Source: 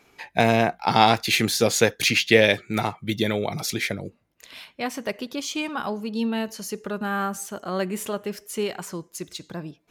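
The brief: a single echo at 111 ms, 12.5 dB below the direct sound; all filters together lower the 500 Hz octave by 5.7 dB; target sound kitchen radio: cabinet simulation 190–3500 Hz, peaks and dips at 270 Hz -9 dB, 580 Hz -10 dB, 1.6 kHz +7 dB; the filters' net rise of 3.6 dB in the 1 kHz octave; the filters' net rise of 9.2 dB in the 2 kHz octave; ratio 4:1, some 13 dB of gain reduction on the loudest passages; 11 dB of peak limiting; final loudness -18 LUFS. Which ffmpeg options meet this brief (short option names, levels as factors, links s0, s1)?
-af "equalizer=f=500:t=o:g=-4,equalizer=f=1000:t=o:g=6,equalizer=f=2000:t=o:g=6.5,acompressor=threshold=0.0631:ratio=4,alimiter=limit=0.158:level=0:latency=1,highpass=190,equalizer=f=270:t=q:w=4:g=-9,equalizer=f=580:t=q:w=4:g=-10,equalizer=f=1600:t=q:w=4:g=7,lowpass=f=3500:w=0.5412,lowpass=f=3500:w=1.3066,aecho=1:1:111:0.237,volume=3.98"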